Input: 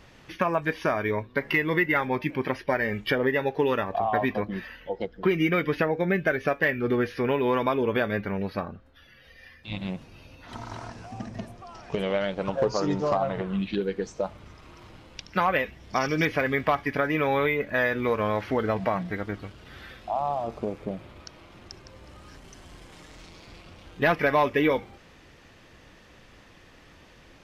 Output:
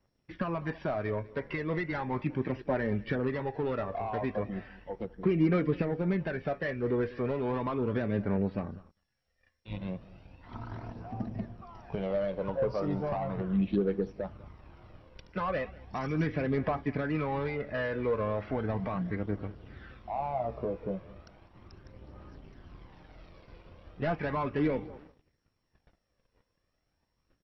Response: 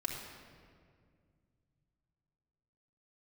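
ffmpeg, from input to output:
-filter_complex "[0:a]acrossover=split=260[a][b];[b]asoftclip=type=tanh:threshold=-24.5dB[c];[a][c]amix=inputs=2:normalize=0,asettb=1/sr,asplit=3[d][e][f];[d]atrim=end=20.164[g];[e]atrim=start=20.16:end=21.02,asetpts=PTS-STARTPTS,afade=t=in:d=0.004:c=qsin,afade=t=out:st=0.856:d=0.004:c=qsin,asplit=2[h][i];[i]adelay=16,volume=-5dB[j];[h][j]amix=inputs=2:normalize=0,atrim=end_sample=37926[k];[f]atrim=start=21.016[l];[g][k]acrossfade=d=0.004:c1=hsin:c2=qsin[m];[m][l]acrossfade=d=0.004:c1=qsin:c2=hsin,asplit=2[n][o];[o]aecho=0:1:200|400|600:0.112|0.0348|0.0108[p];[n][p]amix=inputs=2:normalize=0,aeval=exprs='sgn(val(0))*max(abs(val(0))-0.00133,0)':c=same,lowpass=f=1k:p=1,agate=range=-19dB:threshold=-54dB:ratio=16:detection=peak,aphaser=in_gain=1:out_gain=1:delay=2.1:decay=0.38:speed=0.36:type=triangular,volume=-2dB" -ar 22050 -c:a mp2 -b:a 48k

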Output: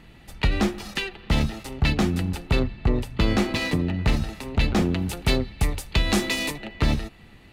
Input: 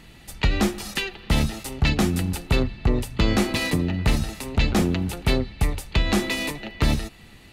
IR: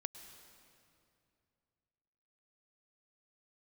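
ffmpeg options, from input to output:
-filter_complex "[0:a]asettb=1/sr,asplit=3[a][b][c];[a]atrim=end=4.964[d];[b]atrim=start=4.96:end=6.58,asetpts=PTS-STARTPTS,afade=t=in:d=0.004:c=qsin,afade=t=out:st=1.616:d=0.004:c=qsin,highshelf=f=5.6k:g=11.5[e];[c]atrim=start=6.576[f];[d][e]acrossfade=d=0.004:c1=hsin:c2=qsin[g];[g][f]acrossfade=d=0.004:c1=qsin:c2=hsin,asplit=2[h][i];[i]adynamicsmooth=sensitivity=6.5:basefreq=3.9k,volume=3dB[j];[h][j]amix=inputs=2:normalize=0,volume=-8.5dB"

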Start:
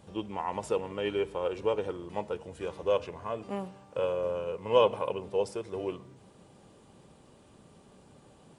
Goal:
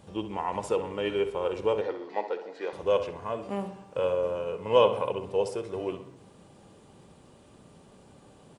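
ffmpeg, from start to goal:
-filter_complex "[0:a]asettb=1/sr,asplit=3[a][b][c];[a]atrim=end=1.814[d];[b]atrim=start=1.81:end=2.73,asetpts=PTS-STARTPTS,afade=t=in:d=0.004:c=qsin,afade=t=out:st=0.916:d=0.004:c=qsin,highpass=f=280:w=0.5412,highpass=f=280:w=1.3066,equalizer=f=770:t=q:w=4:g=5,equalizer=f=1.2k:t=q:w=4:g=-3,equalizer=f=1.9k:t=q:w=4:g=9,equalizer=f=3k:t=q:w=4:g=-6,equalizer=f=4.3k:t=q:w=4:g=8,lowpass=f=5.5k:w=0.5412,lowpass=f=5.5k:w=1.3066[e];[c]atrim=start=2.726[f];[d][e]acrossfade=d=0.004:c1=hsin:c2=qsin[g];[g][f]acrossfade=d=0.004:c1=qsin:c2=hsin,asplit=2[h][i];[i]adelay=65,lowpass=f=3.2k:p=1,volume=-10.5dB,asplit=2[j][k];[k]adelay=65,lowpass=f=3.2k:p=1,volume=0.52,asplit=2[l][m];[m]adelay=65,lowpass=f=3.2k:p=1,volume=0.52,asplit=2[n][o];[o]adelay=65,lowpass=f=3.2k:p=1,volume=0.52,asplit=2[p][q];[q]adelay=65,lowpass=f=3.2k:p=1,volume=0.52,asplit=2[r][s];[s]adelay=65,lowpass=f=3.2k:p=1,volume=0.52[t];[j][l][n][p][r][t]amix=inputs=6:normalize=0[u];[h][u]amix=inputs=2:normalize=0,volume=2dB"

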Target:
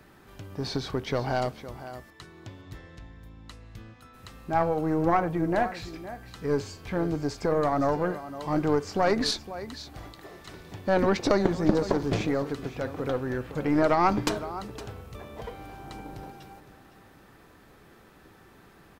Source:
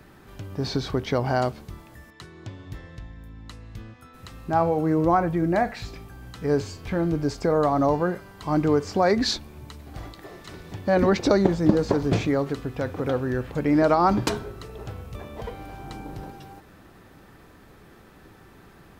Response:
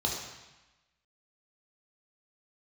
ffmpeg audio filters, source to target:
-af "lowshelf=f=250:g=-4,aecho=1:1:512:0.2,aeval=exprs='0.668*(cos(1*acos(clip(val(0)/0.668,-1,1)))-cos(1*PI/2))+0.106*(cos(4*acos(clip(val(0)/0.668,-1,1)))-cos(4*PI/2))':c=same,volume=-2.5dB"

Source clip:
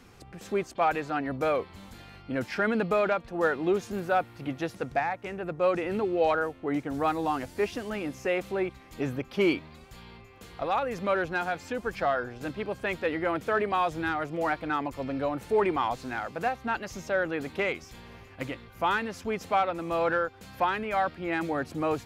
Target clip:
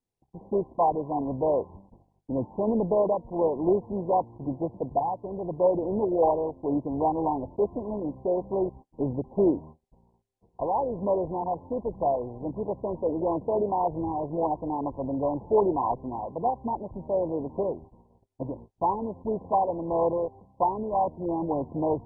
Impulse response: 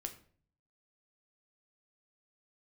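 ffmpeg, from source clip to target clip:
-af "agate=range=-38dB:threshold=-44dB:ratio=16:detection=peak,volume=2.5dB" -ar 22050 -c:a mp2 -b:a 8k

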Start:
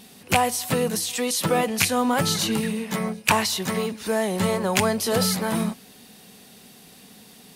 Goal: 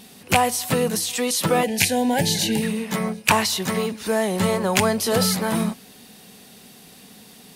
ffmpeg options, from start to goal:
-filter_complex "[0:a]asettb=1/sr,asplit=3[a][b][c];[a]atrim=end=1.634[d];[b]atrim=start=1.63:end=2.62,asetpts=PTS-STARTPTS,afade=t=in:d=0.004:c=qsin,afade=t=out:st=0.986:d=0.004:c=qsin,asuperstop=centerf=1200:order=8:qfactor=2[e];[c]atrim=start=2.616[f];[d][e]acrossfade=d=0.004:c1=hsin:c2=qsin[g];[g][f]acrossfade=d=0.004:c1=qsin:c2=hsin,volume=2dB"

